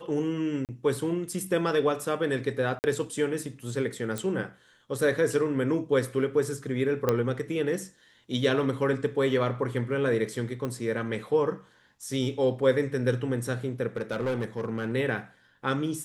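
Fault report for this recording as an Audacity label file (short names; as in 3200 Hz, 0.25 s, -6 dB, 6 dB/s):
0.650000	0.690000	gap 38 ms
2.790000	2.840000	gap 49 ms
4.180000	4.180000	pop
7.090000	7.090000	pop -11 dBFS
10.650000	10.650000	pop -19 dBFS
13.960000	14.950000	clipped -24.5 dBFS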